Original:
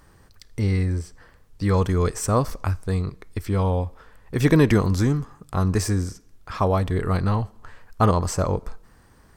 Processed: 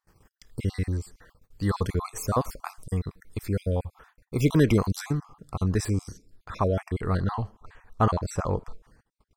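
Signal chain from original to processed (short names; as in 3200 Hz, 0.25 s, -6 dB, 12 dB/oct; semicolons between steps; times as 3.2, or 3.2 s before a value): random spectral dropouts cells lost 37%; high shelf 10000 Hz +8 dB, from 5.13 s -5 dB, from 6.76 s -10.5 dB; gate -52 dBFS, range -24 dB; gain -3 dB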